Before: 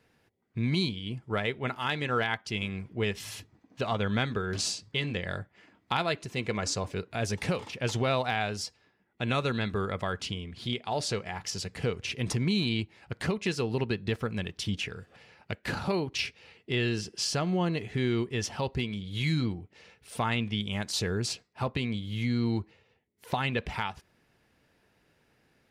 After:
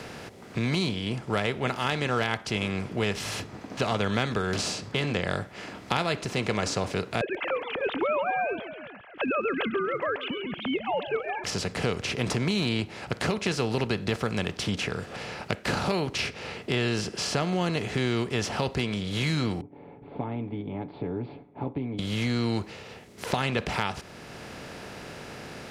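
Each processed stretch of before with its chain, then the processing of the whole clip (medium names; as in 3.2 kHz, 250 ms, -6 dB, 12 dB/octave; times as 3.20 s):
7.21–11.44 s: formants replaced by sine waves + frequency-shifting echo 137 ms, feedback 41%, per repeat -40 Hz, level -22 dB
19.61–21.99 s: cascade formant filter u + comb 7.1 ms, depth 66%
whole clip: spectral levelling over time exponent 0.6; three bands compressed up and down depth 40%; trim -1.5 dB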